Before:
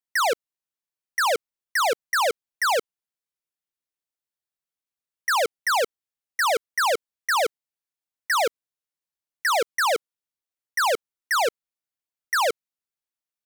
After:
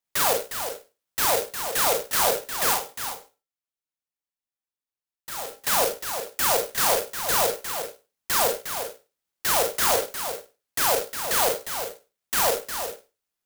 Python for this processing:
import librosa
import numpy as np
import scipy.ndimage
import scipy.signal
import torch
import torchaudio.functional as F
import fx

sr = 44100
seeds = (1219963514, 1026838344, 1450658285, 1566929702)

y = fx.band_shelf(x, sr, hz=4900.0, db=9.5, octaves=1.7)
y = 10.0 ** (-20.0 / 20.0) * np.tanh(y / 10.0 ** (-20.0 / 20.0))
y = fx.comb_fb(y, sr, f0_hz=270.0, decay_s=0.22, harmonics='odd', damping=0.0, mix_pct=80, at=(2.73, 5.53))
y = y + 10.0 ** (-8.5 / 20.0) * np.pad(y, (int(357 * sr / 1000.0), 0))[:len(y)]
y = fx.rev_schroeder(y, sr, rt60_s=0.3, comb_ms=32, drr_db=1.0)
y = fx.clock_jitter(y, sr, seeds[0], jitter_ms=0.12)